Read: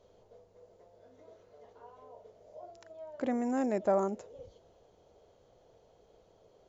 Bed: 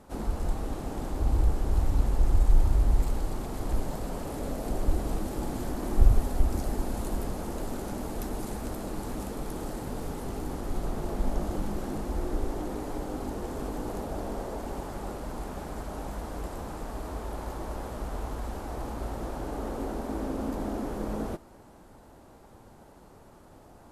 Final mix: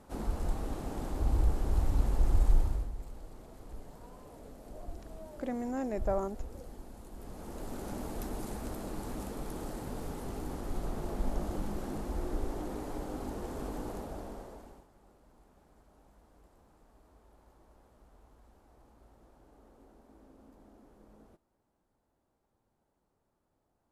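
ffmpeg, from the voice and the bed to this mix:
-filter_complex "[0:a]adelay=2200,volume=0.631[s0];[1:a]volume=2.99,afade=t=out:st=2.49:d=0.42:silence=0.199526,afade=t=in:st=7.13:d=0.8:silence=0.223872,afade=t=out:st=13.79:d=1.08:silence=0.0841395[s1];[s0][s1]amix=inputs=2:normalize=0"

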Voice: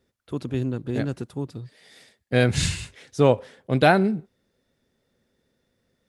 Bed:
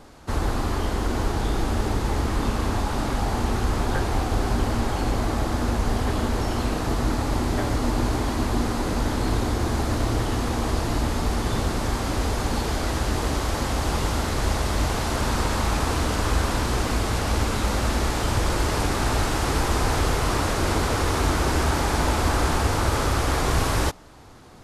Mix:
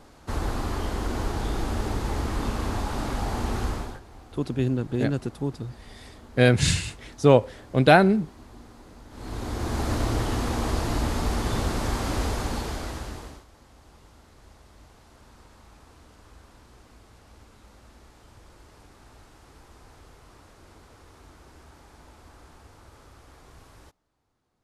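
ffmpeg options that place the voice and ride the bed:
-filter_complex "[0:a]adelay=4050,volume=1.19[s0];[1:a]volume=7.5,afade=t=out:st=3.65:d=0.35:silence=0.105925,afade=t=in:st=9.1:d=0.8:silence=0.0841395,afade=t=out:st=12.19:d=1.26:silence=0.0446684[s1];[s0][s1]amix=inputs=2:normalize=0"

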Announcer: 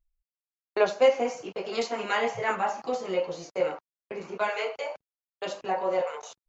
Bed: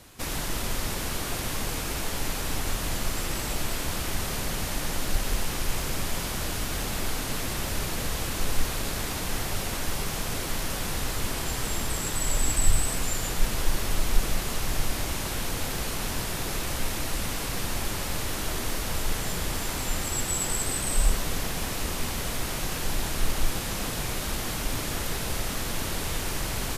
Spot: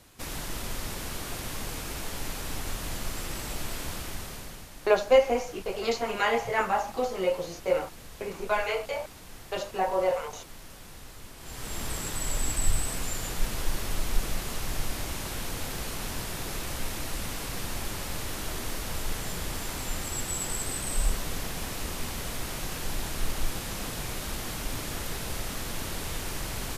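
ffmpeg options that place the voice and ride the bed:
-filter_complex "[0:a]adelay=4100,volume=1.12[s0];[1:a]volume=2.37,afade=t=out:st=3.87:d=0.82:silence=0.266073,afade=t=in:st=11.38:d=0.49:silence=0.237137[s1];[s0][s1]amix=inputs=2:normalize=0"

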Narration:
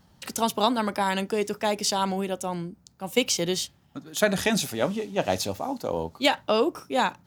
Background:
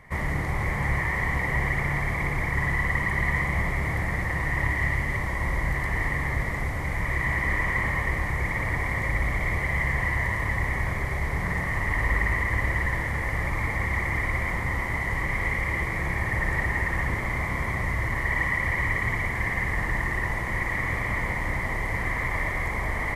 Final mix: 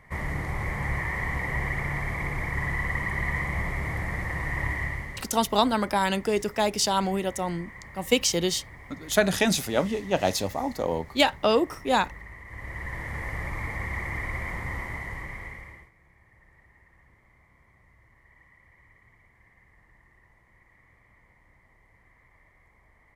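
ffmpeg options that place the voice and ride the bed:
-filter_complex "[0:a]adelay=4950,volume=1.12[s0];[1:a]volume=3.35,afade=t=out:st=4.72:d=0.58:silence=0.158489,afade=t=in:st=12.45:d=0.74:silence=0.199526,afade=t=out:st=14.76:d=1.15:silence=0.0421697[s1];[s0][s1]amix=inputs=2:normalize=0"

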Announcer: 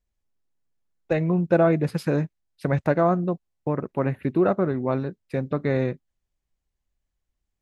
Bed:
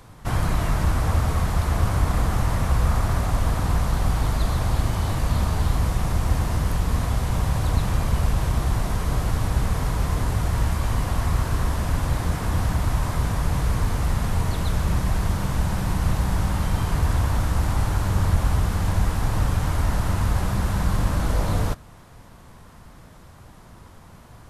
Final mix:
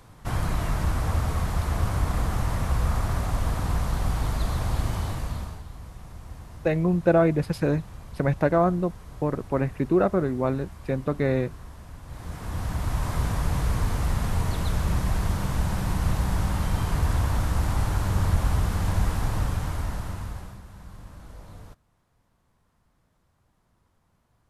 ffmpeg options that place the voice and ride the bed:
-filter_complex "[0:a]adelay=5550,volume=0.944[s0];[1:a]volume=4.47,afade=t=out:st=4.95:d=0.68:silence=0.16788,afade=t=in:st=12.05:d=1.13:silence=0.141254,afade=t=out:st=19.13:d=1.49:silence=0.105925[s1];[s0][s1]amix=inputs=2:normalize=0"

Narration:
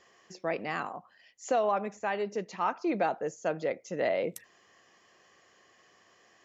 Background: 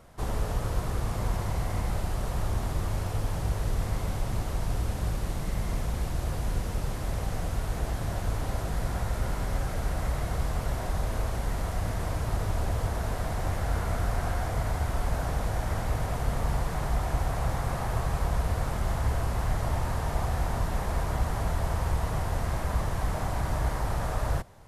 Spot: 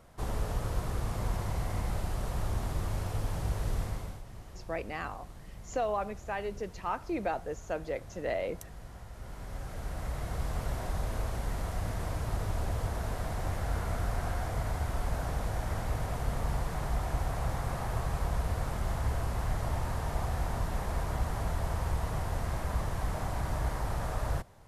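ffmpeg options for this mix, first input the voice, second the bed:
-filter_complex "[0:a]adelay=4250,volume=0.631[s0];[1:a]volume=2.99,afade=t=out:st=3.77:d=0.46:silence=0.211349,afade=t=in:st=9.13:d=1.47:silence=0.223872[s1];[s0][s1]amix=inputs=2:normalize=0"

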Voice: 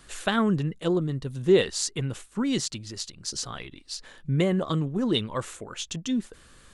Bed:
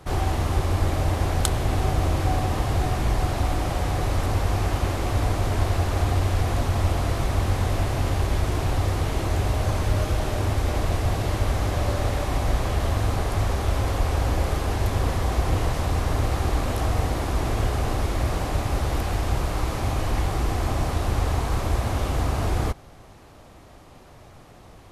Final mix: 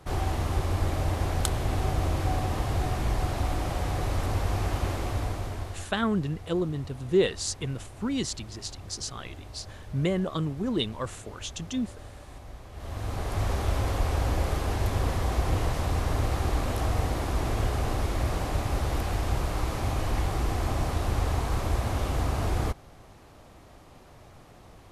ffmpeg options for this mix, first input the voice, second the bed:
-filter_complex "[0:a]adelay=5650,volume=0.708[s0];[1:a]volume=4.47,afade=t=out:st=4.93:d=0.98:silence=0.149624,afade=t=in:st=12.72:d=0.8:silence=0.133352[s1];[s0][s1]amix=inputs=2:normalize=0"

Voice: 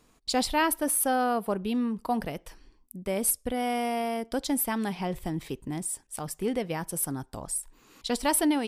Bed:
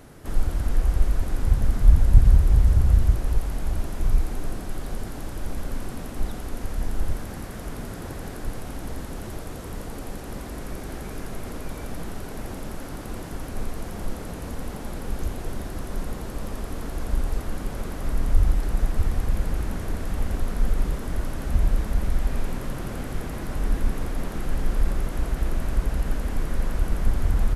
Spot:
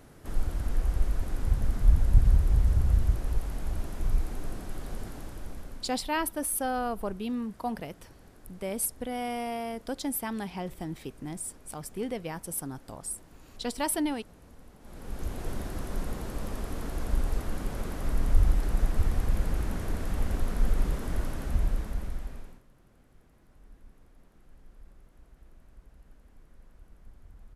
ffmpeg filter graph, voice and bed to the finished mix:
-filter_complex "[0:a]adelay=5550,volume=0.596[s0];[1:a]volume=3.55,afade=t=out:st=5.05:d=0.97:silence=0.199526,afade=t=in:st=14.8:d=0.69:silence=0.141254,afade=t=out:st=21.18:d=1.45:silence=0.0446684[s1];[s0][s1]amix=inputs=2:normalize=0"

